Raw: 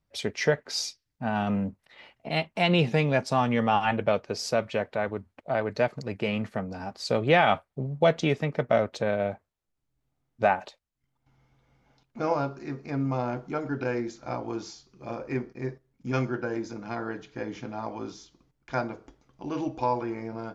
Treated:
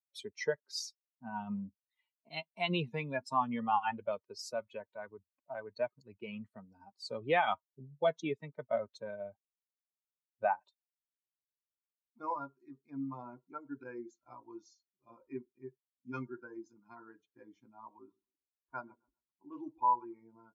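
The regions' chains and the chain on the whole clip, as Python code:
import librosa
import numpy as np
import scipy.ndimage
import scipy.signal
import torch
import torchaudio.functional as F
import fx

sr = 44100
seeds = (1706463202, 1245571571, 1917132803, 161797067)

y = fx.chain(x, sr, fx.env_lowpass(base_hz=920.0, full_db=-23.0),
    fx.echo_bbd(ms=131, stages=2048, feedback_pct=43, wet_db=-15.0), at=(17.97, 20.05))
y = fx.bin_expand(y, sr, power=2.0)
y = scipy.signal.sosfilt(scipy.signal.butter(2, 180.0, 'highpass', fs=sr, output='sos'), y)
y = fx.peak_eq(y, sr, hz=1000.0, db=11.5, octaves=0.33)
y = F.gain(torch.from_numpy(y), -6.5).numpy()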